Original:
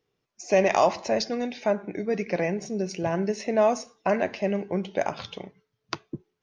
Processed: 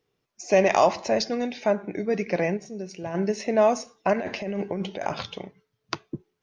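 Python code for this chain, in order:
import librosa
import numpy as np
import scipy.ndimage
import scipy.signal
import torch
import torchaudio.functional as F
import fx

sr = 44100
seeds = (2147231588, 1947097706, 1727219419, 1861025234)

y = fx.comb_fb(x, sr, f0_hz=470.0, decay_s=0.58, harmonics='all', damping=0.0, mix_pct=60, at=(2.56, 3.14), fade=0.02)
y = fx.over_compress(y, sr, threshold_db=-30.0, ratio=-1.0, at=(4.13, 5.23))
y = y * librosa.db_to_amplitude(1.5)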